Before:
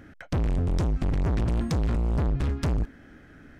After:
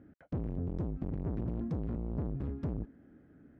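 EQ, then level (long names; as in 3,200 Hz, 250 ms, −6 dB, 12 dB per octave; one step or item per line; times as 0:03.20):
resonant band-pass 310 Hz, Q 0.67
low-shelf EQ 260 Hz +6.5 dB
−9.0 dB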